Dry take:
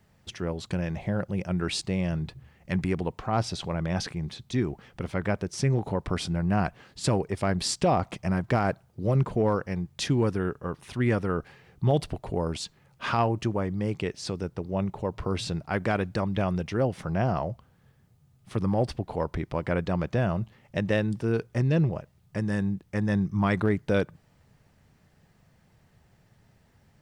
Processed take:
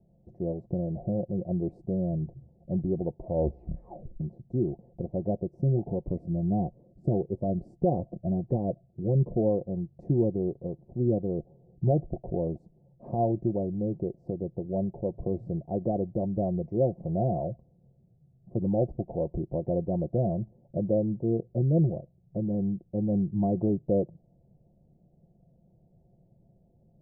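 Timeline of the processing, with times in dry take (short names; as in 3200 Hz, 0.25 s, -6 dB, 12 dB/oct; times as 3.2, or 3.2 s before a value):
3.08 tape stop 1.12 s
5.6–9.37 cascading phaser rising 1.6 Hz
10.63–12.13 running mean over 23 samples
whole clip: elliptic low-pass 680 Hz, stop band 50 dB; comb 5.7 ms, depth 46%; dynamic EQ 180 Hz, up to -4 dB, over -36 dBFS, Q 3.6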